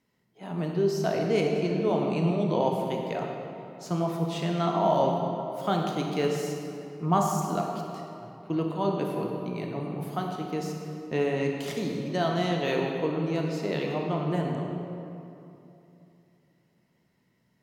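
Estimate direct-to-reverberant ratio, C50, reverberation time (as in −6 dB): 0.5 dB, 2.0 dB, 2.9 s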